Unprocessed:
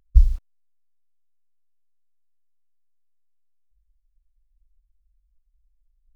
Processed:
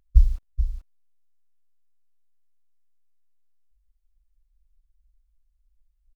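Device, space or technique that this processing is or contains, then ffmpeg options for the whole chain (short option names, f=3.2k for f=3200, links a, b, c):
ducked delay: -filter_complex "[0:a]asplit=3[a][b][c];[b]adelay=430,volume=-4dB[d];[c]apad=whole_len=290228[e];[d][e]sidechaincompress=threshold=-18dB:ratio=8:attack=16:release=835[f];[a][f]amix=inputs=2:normalize=0,volume=-1.5dB"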